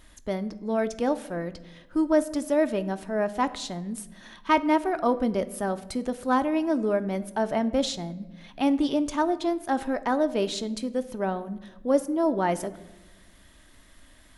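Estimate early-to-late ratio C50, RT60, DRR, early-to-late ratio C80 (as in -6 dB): 16.5 dB, 1.1 s, 10.0 dB, 18.5 dB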